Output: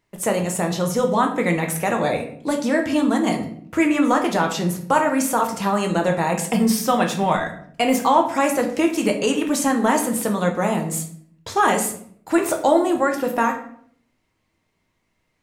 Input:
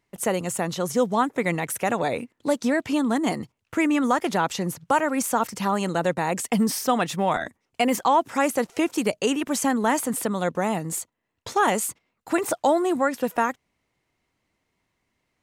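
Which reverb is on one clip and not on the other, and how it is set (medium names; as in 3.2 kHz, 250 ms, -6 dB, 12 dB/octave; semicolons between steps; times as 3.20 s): simulated room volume 89 m³, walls mixed, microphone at 0.6 m; trim +1.5 dB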